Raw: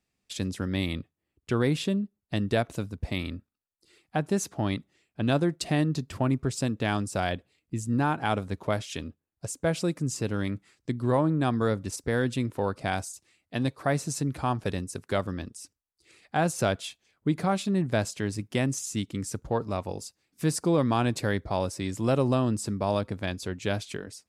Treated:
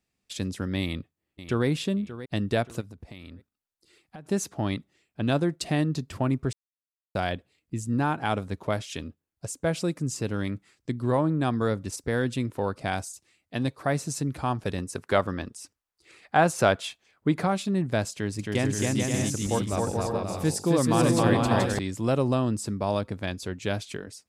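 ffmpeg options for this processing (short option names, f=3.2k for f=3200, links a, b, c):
-filter_complex "[0:a]asplit=2[a][b];[b]afade=t=in:st=0.8:d=0.01,afade=t=out:st=1.67:d=0.01,aecho=0:1:580|1160|1740:0.211349|0.0739721|0.0258902[c];[a][c]amix=inputs=2:normalize=0,asplit=3[d][e][f];[d]afade=t=out:st=2.8:d=0.02[g];[e]acompressor=threshold=-39dB:ratio=12:attack=3.2:release=140:knee=1:detection=peak,afade=t=in:st=2.8:d=0.02,afade=t=out:st=4.25:d=0.02[h];[f]afade=t=in:st=4.25:d=0.02[i];[g][h][i]amix=inputs=3:normalize=0,asettb=1/sr,asplit=3[j][k][l];[j]atrim=end=14.784[m];[k]atrim=start=14.78:end=17.47,asetpts=PTS-STARTPTS,afade=t=in:d=0.004:c=qsin,afade=t=out:st=2.686:d=0.004:c=qsin,equalizer=f=1.1k:w=0.41:g=7[n];[l]atrim=start=17.466[o];[m][n]acrossfade=d=0.004:c1=hsin:c2=qsin[p];[p][o]acrossfade=d=0.004:c1=qsin:c2=hsin,asettb=1/sr,asplit=3[q][r][s];[q]atrim=end=18.124[t];[r]atrim=start=18.12:end=21.79,asetpts=PTS-STARTPTS,afade=t=in:d=0.004:c=qsin,afade=t=out:st=3.666:d=0.004:c=qsin,aecho=1:1:270|432|529.2|587.5|622.5|643.5:0.794|0.631|0.501|0.398|0.316|0.251,atrim=end_sample=161847[u];[s]atrim=start=21.786[v];[t][u]acrossfade=d=0.004:c1=hsin:c2=qsin[w];[w][v]acrossfade=d=0.004:c1=qsin:c2=hsin,asplit=3[x][y][z];[x]atrim=end=6.53,asetpts=PTS-STARTPTS,afade=t=out:st=6.526:d=0.004:c=hsin[aa];[y]atrim=start=6.53:end=7.15,asetpts=PTS-STARTPTS,volume=0[ab];[z]atrim=start=7.15,asetpts=PTS-STARTPTS,afade=t=in:d=0.004:c=hsin[ac];[aa][ab][ac]concat=n=3:v=0:a=1"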